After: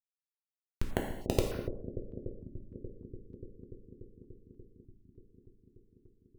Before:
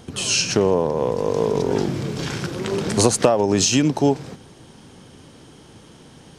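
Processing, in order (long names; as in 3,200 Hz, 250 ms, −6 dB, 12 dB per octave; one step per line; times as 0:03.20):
every overlapping window played backwards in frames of 153 ms
harmonic and percussive parts rebalanced percussive −15 dB
compressor whose output falls as the input rises −25 dBFS, ratio −0.5
elliptic high-pass filter 220 Hz
hollow resonant body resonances 520/880 Hz, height 15 dB, ringing for 25 ms
comparator with hysteresis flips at −6 dBFS
bucket-brigade delay 291 ms, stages 1,024, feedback 84%, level −9 dB
reverb whose tail is shaped and stops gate 300 ms falling, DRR 0.5 dB
notch on a step sequencer 3.3 Hz 470–7,600 Hz
level +1.5 dB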